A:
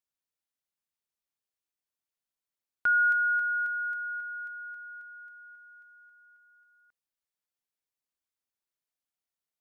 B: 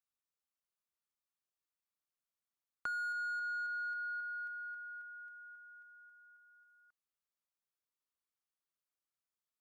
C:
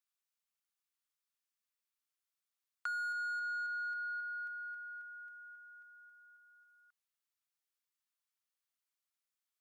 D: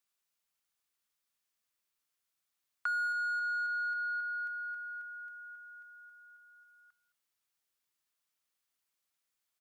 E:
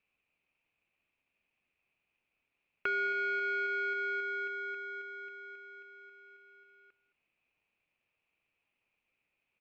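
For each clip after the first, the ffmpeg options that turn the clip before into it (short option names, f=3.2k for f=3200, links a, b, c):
-filter_complex "[0:a]acrossover=split=990|1000[a][b][c];[c]asoftclip=type=tanh:threshold=-35dB[d];[a][b][d]amix=inputs=3:normalize=0,equalizer=f=1.2k:w=3.3:g=7,acompressor=threshold=-31dB:ratio=6,volume=-6dB"
-af "highpass=1.2k,volume=2dB"
-filter_complex "[0:a]acrossover=split=2400[a][b];[b]alimiter=level_in=30dB:limit=-24dB:level=0:latency=1,volume=-30dB[c];[a][c]amix=inputs=2:normalize=0,asplit=2[d][e];[e]adelay=215.7,volume=-18dB,highshelf=f=4k:g=-4.85[f];[d][f]amix=inputs=2:normalize=0,volume=5.5dB"
-filter_complex "[0:a]asplit=2[a][b];[b]acrusher=samples=24:mix=1:aa=0.000001,volume=-5dB[c];[a][c]amix=inputs=2:normalize=0,lowpass=f=2.5k:t=q:w=9.9,volume=-3dB"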